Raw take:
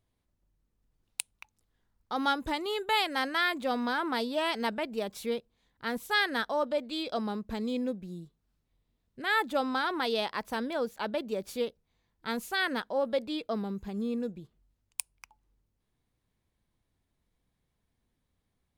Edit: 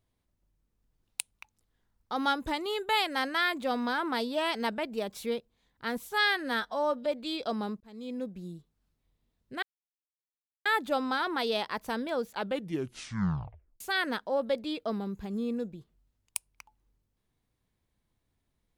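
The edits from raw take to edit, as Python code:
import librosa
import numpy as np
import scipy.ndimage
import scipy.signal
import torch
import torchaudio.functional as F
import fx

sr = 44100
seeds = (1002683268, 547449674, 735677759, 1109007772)

y = fx.edit(x, sr, fx.stretch_span(start_s=6.05, length_s=0.67, factor=1.5),
    fx.fade_in_span(start_s=7.47, length_s=0.6),
    fx.insert_silence(at_s=9.29, length_s=1.03),
    fx.tape_stop(start_s=11.01, length_s=1.43), tone=tone)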